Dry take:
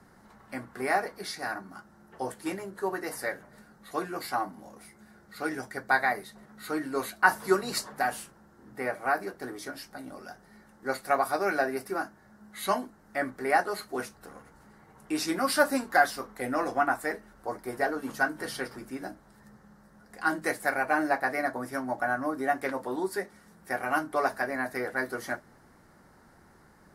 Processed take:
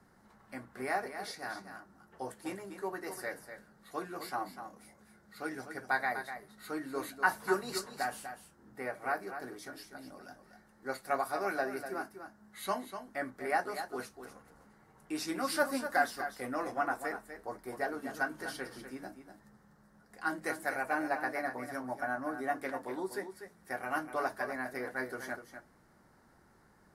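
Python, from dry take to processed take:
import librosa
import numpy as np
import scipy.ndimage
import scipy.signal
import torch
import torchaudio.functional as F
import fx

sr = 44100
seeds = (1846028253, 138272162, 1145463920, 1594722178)

y = x + 10.0 ** (-9.5 / 20.0) * np.pad(x, (int(246 * sr / 1000.0), 0))[:len(x)]
y = F.gain(torch.from_numpy(y), -7.0).numpy()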